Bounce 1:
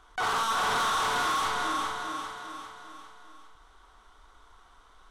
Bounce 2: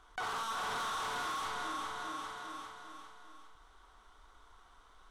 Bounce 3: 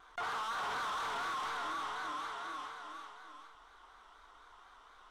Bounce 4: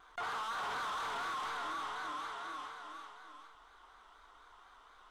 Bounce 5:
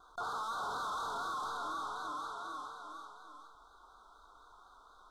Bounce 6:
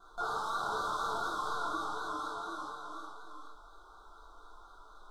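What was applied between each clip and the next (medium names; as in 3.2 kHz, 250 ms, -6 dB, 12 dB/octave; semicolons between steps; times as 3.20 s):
compression 3:1, threshold -34 dBFS, peak gain reduction 6.5 dB; trim -4 dB
vibrato 4.1 Hz 86 cents; overdrive pedal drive 13 dB, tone 3.1 kHz, clips at -29 dBFS; trim -2.5 dB
band-stop 5.6 kHz, Q 27; trim -1 dB
elliptic band-stop 1.4–3.7 kHz, stop band 40 dB; trim +1.5 dB
simulated room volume 44 m³, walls mixed, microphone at 1.1 m; trim -2.5 dB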